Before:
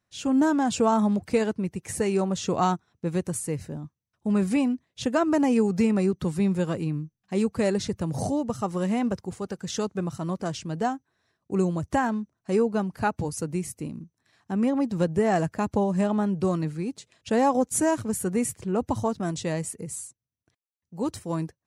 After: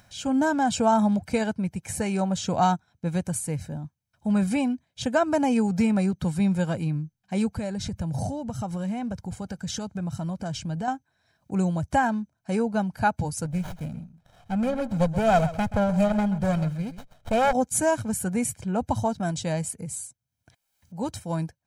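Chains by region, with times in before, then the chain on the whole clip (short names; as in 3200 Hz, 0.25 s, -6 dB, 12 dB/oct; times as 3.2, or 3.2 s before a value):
7.56–10.88 low shelf 170 Hz +7.5 dB + compressor 3:1, threshold -29 dBFS
13.45–17.53 comb 1.6 ms, depth 60% + echo 0.129 s -14.5 dB + running maximum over 17 samples
whole clip: comb 1.3 ms, depth 62%; upward compressor, threshold -42 dBFS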